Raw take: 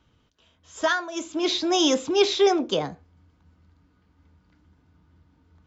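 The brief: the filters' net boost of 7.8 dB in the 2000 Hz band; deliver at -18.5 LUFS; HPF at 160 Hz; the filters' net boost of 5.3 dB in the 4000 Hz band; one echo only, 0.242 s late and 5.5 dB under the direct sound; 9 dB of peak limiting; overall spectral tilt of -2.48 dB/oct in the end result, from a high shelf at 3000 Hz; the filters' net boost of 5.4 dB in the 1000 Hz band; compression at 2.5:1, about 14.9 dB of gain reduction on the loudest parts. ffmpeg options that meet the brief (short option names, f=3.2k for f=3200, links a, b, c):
-af "highpass=160,equalizer=f=1k:t=o:g=6,equalizer=f=2k:t=o:g=9,highshelf=f=3k:g=-7.5,equalizer=f=4k:t=o:g=8.5,acompressor=threshold=-36dB:ratio=2.5,alimiter=level_in=3.5dB:limit=-24dB:level=0:latency=1,volume=-3.5dB,aecho=1:1:242:0.531,volume=17dB"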